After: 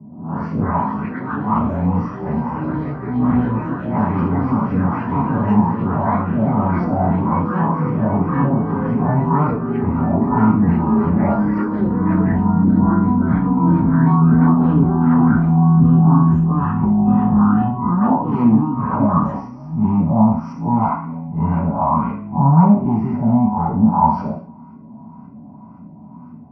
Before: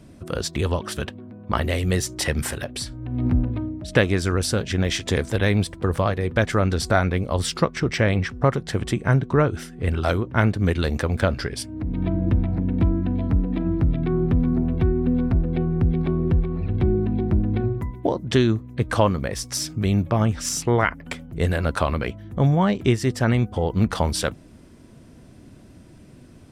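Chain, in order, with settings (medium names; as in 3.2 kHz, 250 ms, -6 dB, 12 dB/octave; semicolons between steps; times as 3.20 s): spectral blur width 99 ms; bass shelf 280 Hz -7.5 dB; sine folder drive 11 dB, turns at -8 dBFS; static phaser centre 2.5 kHz, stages 8; LFO low-pass saw up 1.9 Hz 460–1500 Hz; reverberation RT60 0.45 s, pre-delay 3 ms, DRR -7 dB; ever faster or slower copies 97 ms, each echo +4 st, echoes 3, each echo -6 dB; cabinet simulation 110–5000 Hz, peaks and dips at 110 Hz -4 dB, 340 Hz -6 dB, 1 kHz +5 dB, 3.6 kHz -5 dB; trim -18 dB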